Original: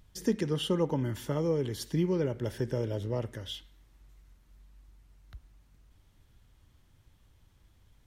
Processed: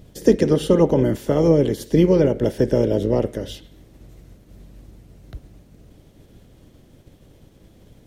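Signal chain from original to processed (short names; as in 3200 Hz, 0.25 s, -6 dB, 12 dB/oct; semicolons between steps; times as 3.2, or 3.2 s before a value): spectral limiter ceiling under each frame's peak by 15 dB; resonant low shelf 760 Hz +10 dB, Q 1.5; notch 890 Hz, Q 26; gain +3 dB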